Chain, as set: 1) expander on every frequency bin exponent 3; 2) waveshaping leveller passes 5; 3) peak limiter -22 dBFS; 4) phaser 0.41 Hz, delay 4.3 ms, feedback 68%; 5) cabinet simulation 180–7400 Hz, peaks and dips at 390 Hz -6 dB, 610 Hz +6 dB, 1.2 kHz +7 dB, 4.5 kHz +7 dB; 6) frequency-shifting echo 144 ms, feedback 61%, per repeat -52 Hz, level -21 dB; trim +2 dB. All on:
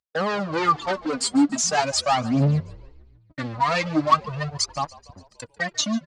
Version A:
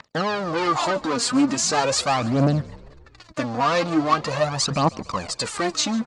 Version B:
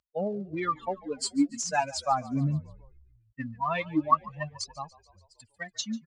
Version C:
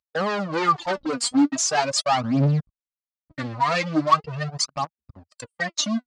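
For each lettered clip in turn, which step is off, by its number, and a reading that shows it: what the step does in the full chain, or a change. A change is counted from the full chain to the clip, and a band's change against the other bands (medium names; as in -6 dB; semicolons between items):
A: 1, momentary loudness spread change -5 LU; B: 2, crest factor change +2.0 dB; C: 6, echo-to-direct -19.0 dB to none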